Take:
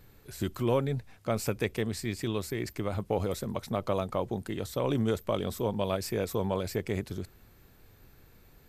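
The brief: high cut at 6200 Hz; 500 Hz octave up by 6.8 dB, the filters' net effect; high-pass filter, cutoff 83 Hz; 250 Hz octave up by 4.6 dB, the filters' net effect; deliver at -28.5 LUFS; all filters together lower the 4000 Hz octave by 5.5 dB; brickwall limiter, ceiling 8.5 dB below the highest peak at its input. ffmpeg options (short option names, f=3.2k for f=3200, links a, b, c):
-af "highpass=83,lowpass=6.2k,equalizer=f=250:t=o:g=4,equalizer=f=500:t=o:g=7,equalizer=f=4k:t=o:g=-6.5,volume=1.5dB,alimiter=limit=-16dB:level=0:latency=1"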